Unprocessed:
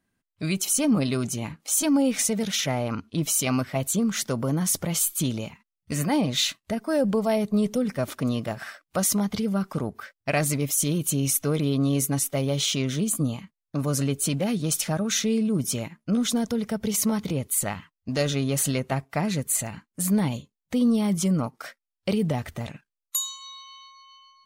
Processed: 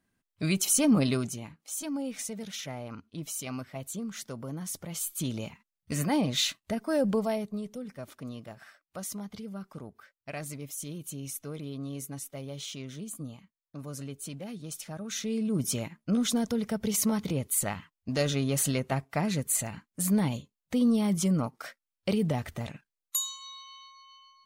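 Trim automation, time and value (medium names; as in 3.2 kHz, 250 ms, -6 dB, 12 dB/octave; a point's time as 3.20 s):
1.11 s -1 dB
1.51 s -12.5 dB
4.84 s -12.5 dB
5.46 s -3.5 dB
7.19 s -3.5 dB
7.64 s -14.5 dB
14.88 s -14.5 dB
15.62 s -3 dB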